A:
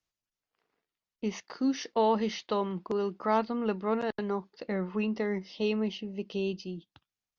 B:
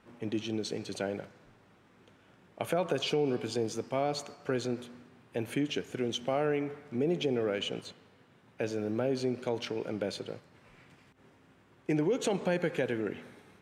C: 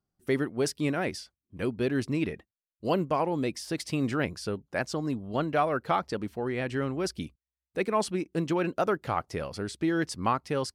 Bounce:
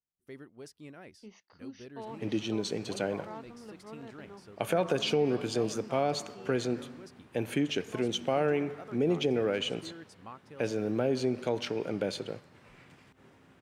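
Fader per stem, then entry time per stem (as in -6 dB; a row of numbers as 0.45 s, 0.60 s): -18.0 dB, +2.0 dB, -20.0 dB; 0.00 s, 2.00 s, 0.00 s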